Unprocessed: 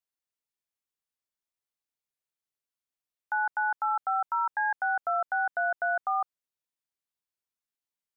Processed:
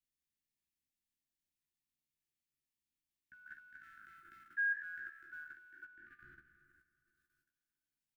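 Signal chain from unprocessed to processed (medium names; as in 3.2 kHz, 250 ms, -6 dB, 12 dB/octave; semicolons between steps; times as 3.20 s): spectral sustain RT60 1.72 s; Chebyshev band-stop 350–1700 Hz, order 5; 3.33–5.84 s: tone controls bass -10 dB, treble +9 dB; feedback delay 364 ms, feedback 42%, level -16 dB; level held to a coarse grid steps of 12 dB; bass shelf 460 Hz +9 dB; doubling 14 ms -5 dB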